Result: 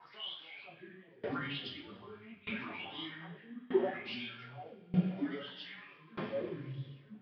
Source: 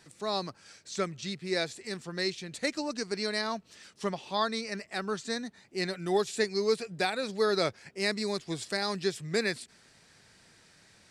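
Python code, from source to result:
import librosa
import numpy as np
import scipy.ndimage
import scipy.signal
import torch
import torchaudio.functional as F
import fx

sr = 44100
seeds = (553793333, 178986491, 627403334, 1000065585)

y = fx.freq_compress(x, sr, knee_hz=1700.0, ratio=1.5)
y = scipy.signal.sosfilt(scipy.signal.butter(4, 5900.0, 'lowpass', fs=sr, output='sos'), y)
y = fx.low_shelf(y, sr, hz=60.0, db=7.5)
y = fx.over_compress(y, sr, threshold_db=-37.0, ratio=-1.0)
y = fx.add_hum(y, sr, base_hz=50, snr_db=26)
y = fx.wah_lfo(y, sr, hz=0.5, low_hz=250.0, high_hz=3400.0, q=8.5)
y = fx.stretch_vocoder(y, sr, factor=0.65)
y = fx.rev_double_slope(y, sr, seeds[0], early_s=0.42, late_s=3.3, knee_db=-18, drr_db=-6.5)
y = fx.echo_pitch(y, sr, ms=217, semitones=-5, count=2, db_per_echo=-3.0)
y = fx.tremolo_decay(y, sr, direction='decaying', hz=0.81, depth_db=25)
y = y * librosa.db_to_amplitude(9.0)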